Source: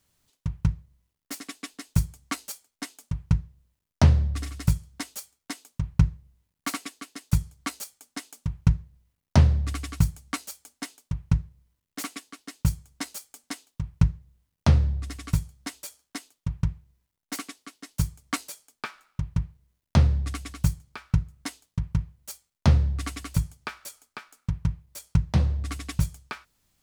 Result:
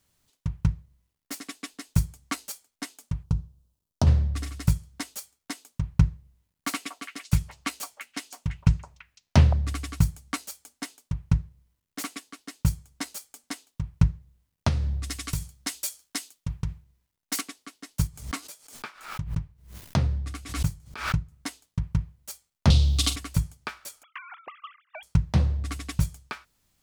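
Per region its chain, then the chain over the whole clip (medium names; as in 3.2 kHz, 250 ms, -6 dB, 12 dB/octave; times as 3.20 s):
3.23–4.07 s: peaking EQ 2 kHz -14.5 dB 0.82 oct + compression 3:1, threshold -18 dBFS
6.73–9.53 s: peaking EQ 2.7 kHz +4.5 dB 0.87 oct + repeats whose band climbs or falls 168 ms, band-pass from 770 Hz, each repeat 1.4 oct, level -3 dB
14.68–17.41 s: treble shelf 2.1 kHz +10 dB + compression 4:1, threshold -23 dBFS + tape noise reduction on one side only decoder only
18.07–21.32 s: flange 1.6 Hz, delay 5.8 ms, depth 6.7 ms, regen -60% + swell ahead of each attack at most 100 dB/s
22.70–23.16 s: resonant high shelf 2.5 kHz +11.5 dB, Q 3 + flutter echo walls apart 7.2 m, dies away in 0.2 s + three bands compressed up and down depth 70%
24.03–25.03 s: formants replaced by sine waves + compression 10:1, threshold -36 dBFS
whole clip: none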